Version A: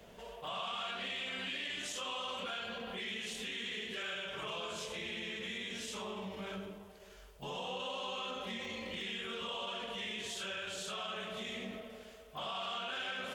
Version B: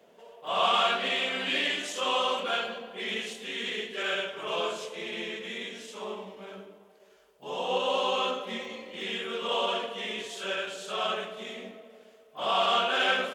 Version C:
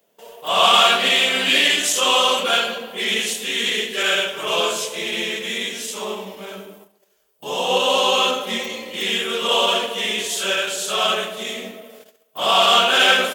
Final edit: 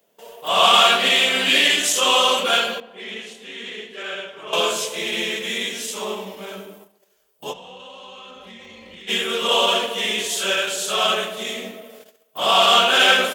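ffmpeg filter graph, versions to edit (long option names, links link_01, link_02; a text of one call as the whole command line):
ffmpeg -i take0.wav -i take1.wav -i take2.wav -filter_complex "[2:a]asplit=3[link_01][link_02][link_03];[link_01]atrim=end=2.802[link_04];[1:a]atrim=start=2.798:end=4.532[link_05];[link_02]atrim=start=4.528:end=7.54[link_06];[0:a]atrim=start=7.5:end=9.11[link_07];[link_03]atrim=start=9.07[link_08];[link_04][link_05]acrossfade=duration=0.004:curve1=hsin:curve2=hsin[link_09];[link_09][link_06]acrossfade=duration=0.004:curve1=hsin:curve2=hsin[link_10];[link_10][link_07]acrossfade=duration=0.04:curve1=tri:curve2=tri[link_11];[link_11][link_08]acrossfade=duration=0.04:curve1=tri:curve2=tri" out.wav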